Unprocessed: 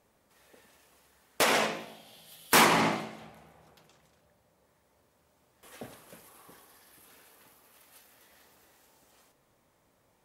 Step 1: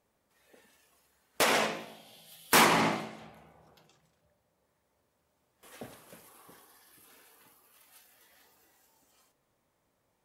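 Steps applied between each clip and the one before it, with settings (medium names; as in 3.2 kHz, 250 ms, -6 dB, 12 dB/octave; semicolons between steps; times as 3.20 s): spectral noise reduction 6 dB; trim -1 dB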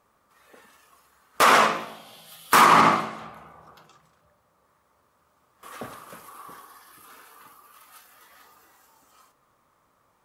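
peaking EQ 1.2 kHz +13.5 dB 0.63 oct; peak limiter -12 dBFS, peak gain reduction 7.5 dB; trim +6 dB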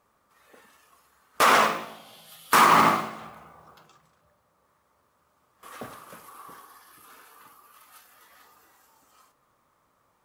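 modulation noise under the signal 22 dB; trim -2 dB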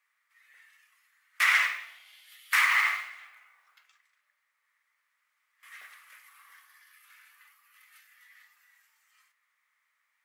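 resonant high-pass 2 kHz, resonance Q 5.4; trim -8 dB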